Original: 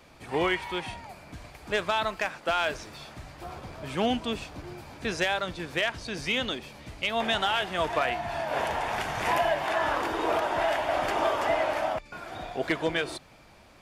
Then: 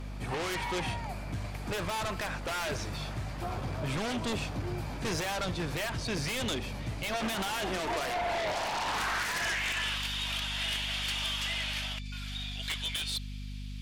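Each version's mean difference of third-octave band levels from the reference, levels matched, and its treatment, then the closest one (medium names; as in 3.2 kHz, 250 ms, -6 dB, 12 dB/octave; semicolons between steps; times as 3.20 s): 9.0 dB: high-pass sweep 100 Hz -> 3.3 kHz, 6.83–9.99 s; hum 50 Hz, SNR 13 dB; in parallel at -10 dB: sine folder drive 17 dB, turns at -12.5 dBFS; on the sum: peak limiter -15.5 dBFS, peak gain reduction 4.5 dB; trim -9 dB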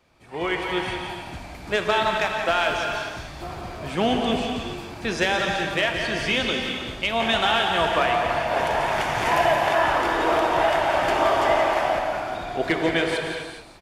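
4.0 dB: treble shelf 9.7 kHz -4 dB; level rider gain up to 14 dB; on a send: delay 173 ms -8 dB; on the sum: gated-style reverb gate 450 ms flat, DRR 2.5 dB; trim -9 dB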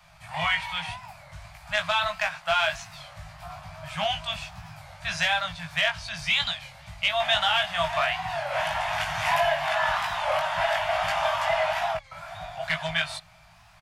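7.0 dB: Chebyshev band-stop 180–630 Hz, order 4; dynamic bell 3.3 kHz, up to +5 dB, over -41 dBFS, Q 0.73; doubling 19 ms -3.5 dB; warped record 33 1/3 rpm, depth 160 cents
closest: second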